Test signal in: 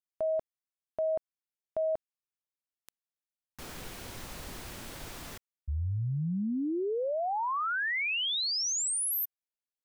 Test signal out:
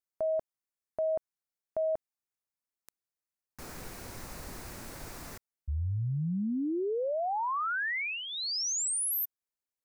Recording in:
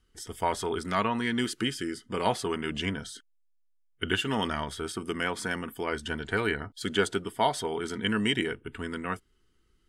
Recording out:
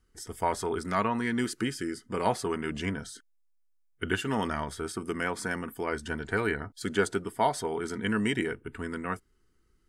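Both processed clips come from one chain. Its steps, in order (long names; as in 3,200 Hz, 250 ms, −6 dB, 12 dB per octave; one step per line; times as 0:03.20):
parametric band 3,200 Hz −9 dB 0.59 octaves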